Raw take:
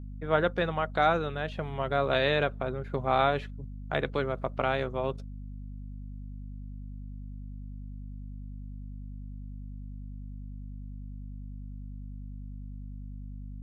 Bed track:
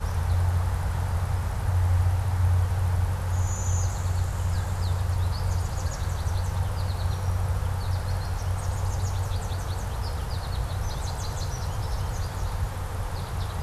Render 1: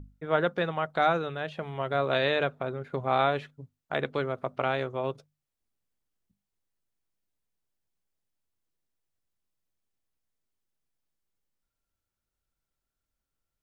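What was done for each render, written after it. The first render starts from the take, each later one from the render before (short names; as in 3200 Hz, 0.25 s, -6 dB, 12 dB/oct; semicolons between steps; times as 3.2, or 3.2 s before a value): notches 50/100/150/200/250 Hz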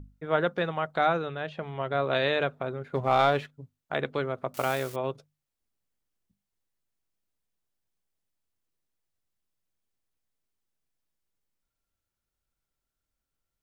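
1.01–2.15 air absorption 54 m; 2.95–3.54 sample leveller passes 1; 4.54–4.96 switching spikes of -29 dBFS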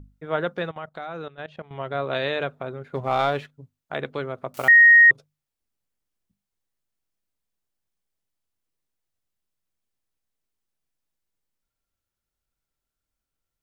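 0.71–1.71 level quantiser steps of 17 dB; 4.68–5.11 bleep 1870 Hz -8.5 dBFS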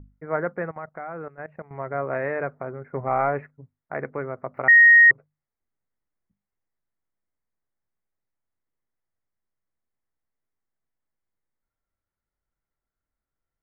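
elliptic low-pass 2100 Hz, stop band 40 dB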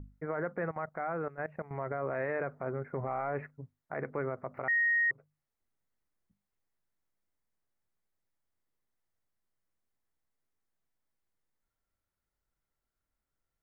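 compressor 3:1, threshold -24 dBFS, peak gain reduction 9.5 dB; limiter -24.5 dBFS, peak gain reduction 10.5 dB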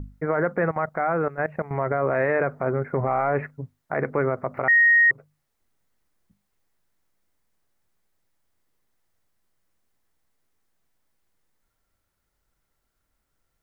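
gain +11.5 dB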